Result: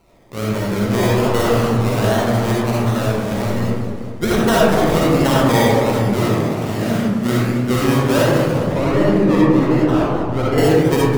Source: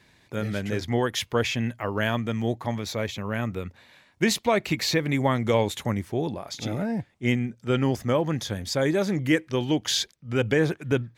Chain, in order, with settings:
sample-and-hold swept by an LFO 25×, swing 60% 1.3 Hz
0:08.51–0:10.58: low-pass filter 1,500 Hz 6 dB per octave
convolution reverb RT60 1.7 s, pre-delay 20 ms, DRR −6 dB
feedback echo with a swinging delay time 200 ms, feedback 55%, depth 219 cents, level −10.5 dB
level +1.5 dB

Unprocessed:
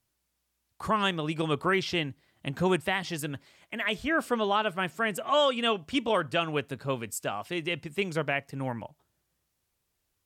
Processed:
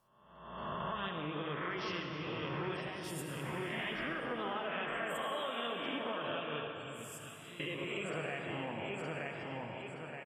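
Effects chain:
peak hold with a rise ahead of every peak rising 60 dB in 1.05 s
repeating echo 922 ms, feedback 31%, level −8 dB
flanger 1.2 Hz, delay 5.4 ms, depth 7.7 ms, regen −50%
0:06.67–0:07.60: guitar amp tone stack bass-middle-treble 6-0-2
downward compressor 6 to 1, threshold −38 dBFS, peak gain reduction 15.5 dB
0:02.81–0:03.28: parametric band 1,400 Hz −9 dB 2.3 octaves
0:04.67–0:05.16: hollow resonant body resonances 600/2,600 Hz, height 7 dB, ringing for 25 ms
gate on every frequency bin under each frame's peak −25 dB strong
convolution reverb RT60 3.5 s, pre-delay 65 ms, DRR 3 dB

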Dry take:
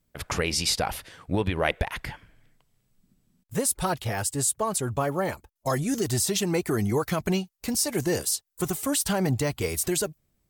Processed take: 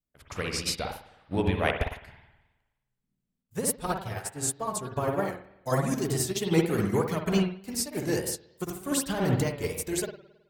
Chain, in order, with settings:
spring reverb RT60 1.1 s, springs 53 ms, chirp 40 ms, DRR 0 dB
pitch vibrato 3.3 Hz 67 cents
expander for the loud parts 2.5 to 1, over −32 dBFS
level +1.5 dB

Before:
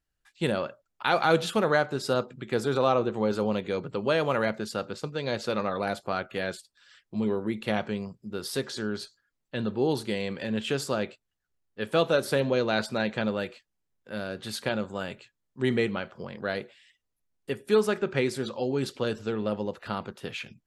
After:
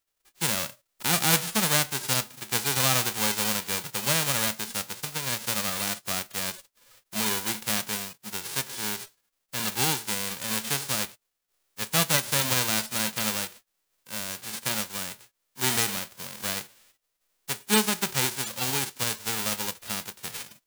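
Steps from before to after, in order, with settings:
spectral envelope flattened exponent 0.1

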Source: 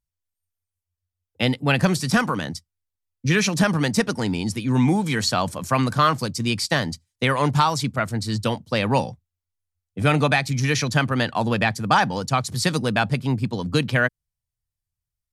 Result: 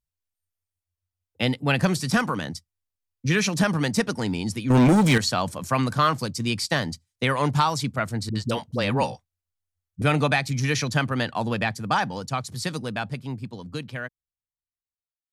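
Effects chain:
fade-out on the ending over 4.61 s
0:04.70–0:05.18: leveller curve on the samples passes 3
0:08.29–0:10.02: all-pass dispersion highs, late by 62 ms, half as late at 330 Hz
level −2.5 dB

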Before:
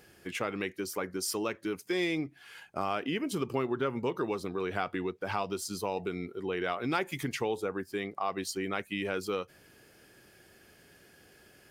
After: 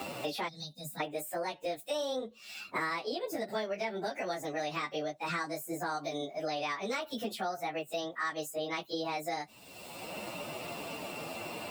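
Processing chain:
phase-vocoder pitch shift without resampling +8.5 semitones
gain on a spectral selection 0:00.48–0:01.01, 270–3,600 Hz −25 dB
multiband upward and downward compressor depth 100%

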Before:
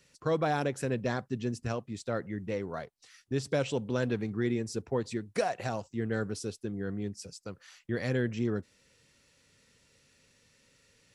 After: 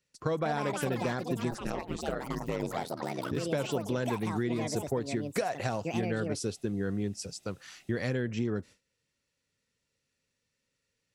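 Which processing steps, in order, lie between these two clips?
delay with pitch and tempo change per echo 270 ms, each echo +6 semitones, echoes 3, each echo −6 dB
downward compressor, threshold −32 dBFS, peak gain reduction 8.5 dB
0:01.50–0:03.36: ring modulation 110 Hz → 29 Hz
noise gate with hold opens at −53 dBFS
level +5 dB

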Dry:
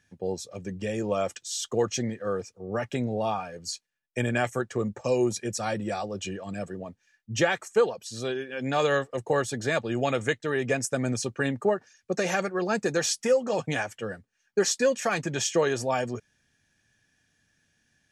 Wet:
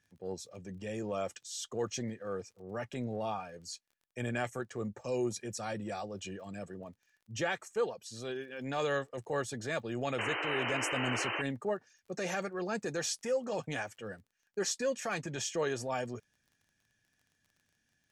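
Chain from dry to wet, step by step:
transient designer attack −5 dB, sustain 0 dB
sound drawn into the spectrogram noise, 0:10.18–0:11.42, 290–3,100 Hz −28 dBFS
surface crackle 29 per second −47 dBFS
level −7.5 dB

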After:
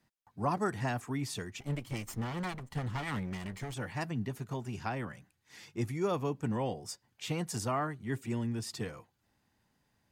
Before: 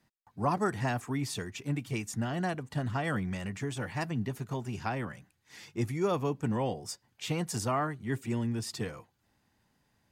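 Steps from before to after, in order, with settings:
0:01.60–0:03.74: lower of the sound and its delayed copy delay 0.96 ms
level −2.5 dB

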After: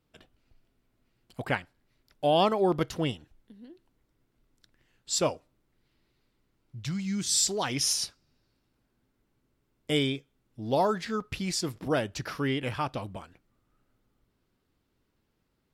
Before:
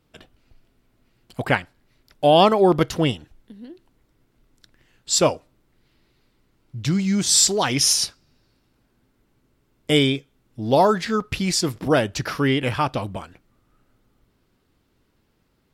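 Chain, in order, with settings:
0:06.79–0:07.46: parametric band 270 Hz → 1,100 Hz −11.5 dB 1 octave
level −9 dB

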